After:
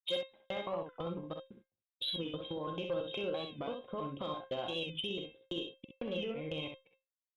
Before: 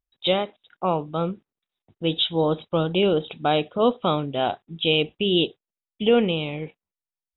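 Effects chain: slices in reverse order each 0.167 s, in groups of 2; gate -47 dBFS, range -28 dB; dynamic EQ 320 Hz, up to +5 dB, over -42 dBFS, Q 6.7; in parallel at +3 dB: level quantiser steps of 9 dB; on the sum: limiter -11 dBFS, peak gain reduction 10.5 dB; compressor 6:1, threshold -23 dBFS, peak gain reduction 7.5 dB; resonator 530 Hz, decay 0.23 s, harmonics all, mix 90%; added harmonics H 5 -23 dB, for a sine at -26 dBFS; on a send: early reflections 47 ms -11.5 dB, 64 ms -6 dB; on the sum: record warp 45 rpm, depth 100 cents; gain +1 dB

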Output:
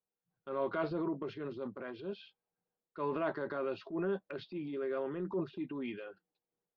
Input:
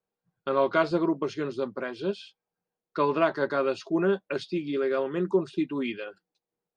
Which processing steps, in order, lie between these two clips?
LPF 4400 Hz 24 dB/oct; high shelf 3200 Hz -11 dB; transient shaper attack -6 dB, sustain +6 dB; gain -9 dB

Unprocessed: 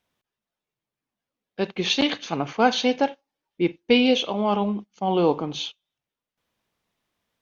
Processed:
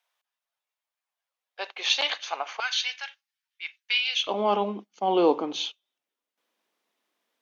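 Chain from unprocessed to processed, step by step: HPF 670 Hz 24 dB/oct, from 2.6 s 1500 Hz, from 4.27 s 260 Hz

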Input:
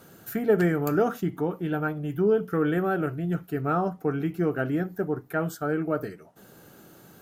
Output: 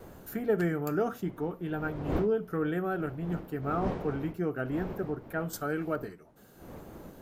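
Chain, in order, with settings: wind noise 450 Hz -36 dBFS; wow and flutter 27 cents; 5.53–5.96 high shelf 2100 Hz +10.5 dB; gain -6 dB

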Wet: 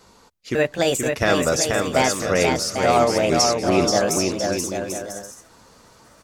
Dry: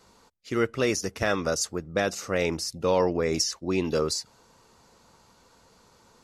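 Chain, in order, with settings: trilling pitch shifter +4.5 st, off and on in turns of 0.549 s; bouncing-ball echo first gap 0.48 s, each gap 0.65×, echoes 5; gain +6 dB

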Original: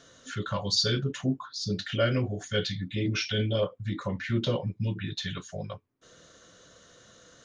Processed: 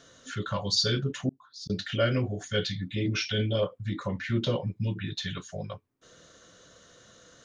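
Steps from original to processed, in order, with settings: 1.29–1.7 auto swell 0.77 s

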